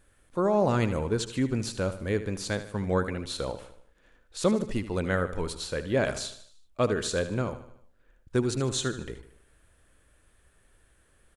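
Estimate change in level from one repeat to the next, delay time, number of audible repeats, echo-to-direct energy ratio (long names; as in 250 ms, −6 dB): −6.0 dB, 76 ms, 4, −11.5 dB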